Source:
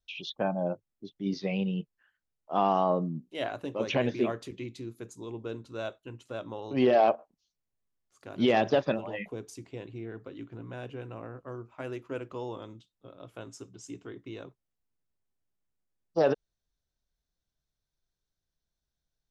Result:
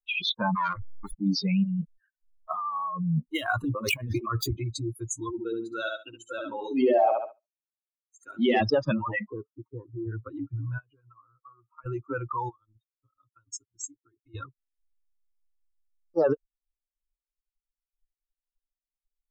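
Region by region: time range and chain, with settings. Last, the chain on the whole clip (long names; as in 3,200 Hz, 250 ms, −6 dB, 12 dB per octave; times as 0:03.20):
0:00.55–0:01.14: converter with a step at zero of −40.5 dBFS + high shelf with overshoot 2,600 Hz −9.5 dB, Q 3 + saturating transformer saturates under 2,400 Hz
0:01.64–0:04.58: gap after every zero crossing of 0.055 ms + compressor whose output falls as the input rises −37 dBFS
0:05.30–0:08.61: high-pass filter 240 Hz + parametric band 1,100 Hz −8.5 dB 0.51 octaves + repeating echo 70 ms, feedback 42%, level −3 dB
0:09.19–0:10.07: spike at every zero crossing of −39.5 dBFS + low-pass filter 1,400 Hz 24 dB per octave + low-shelf EQ 170 Hz −11 dB
0:10.78–0:11.86: low-pass filter 2,900 Hz 6 dB per octave + low-shelf EQ 310 Hz −8 dB + downward compressor 3 to 1, threshold −51 dBFS
0:12.49–0:14.35: transient designer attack +3 dB, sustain −10 dB + downward compressor 3 to 1, threshold −54 dBFS
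whole clip: spectral dynamics exaggerated over time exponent 3; high-shelf EQ 2,700 Hz −8 dB; envelope flattener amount 70%; level +3.5 dB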